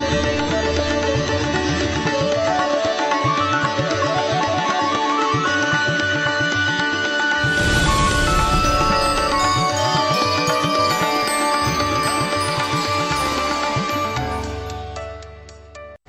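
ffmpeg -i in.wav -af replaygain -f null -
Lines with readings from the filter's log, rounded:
track_gain = +1.9 dB
track_peak = 0.407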